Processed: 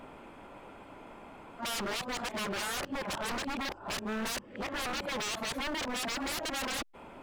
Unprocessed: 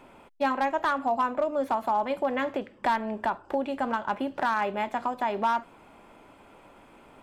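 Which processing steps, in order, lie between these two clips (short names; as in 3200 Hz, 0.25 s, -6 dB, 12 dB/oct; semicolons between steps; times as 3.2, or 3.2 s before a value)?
whole clip reversed; high shelf 4300 Hz -6 dB; wavefolder -33.5 dBFS; gain +3.5 dB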